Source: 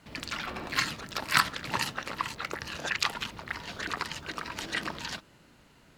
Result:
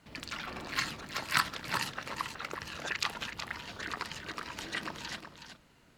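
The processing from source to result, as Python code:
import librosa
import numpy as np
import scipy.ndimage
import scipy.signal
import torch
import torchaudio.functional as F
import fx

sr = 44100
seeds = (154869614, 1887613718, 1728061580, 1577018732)

y = x + 10.0 ** (-8.5 / 20.0) * np.pad(x, (int(371 * sr / 1000.0), 0))[:len(x)]
y = F.gain(torch.from_numpy(y), -4.5).numpy()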